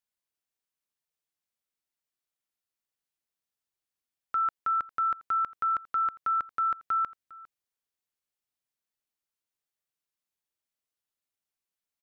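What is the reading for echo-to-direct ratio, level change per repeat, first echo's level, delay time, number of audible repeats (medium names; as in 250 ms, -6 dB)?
-21.0 dB, no regular repeats, -21.0 dB, 404 ms, 1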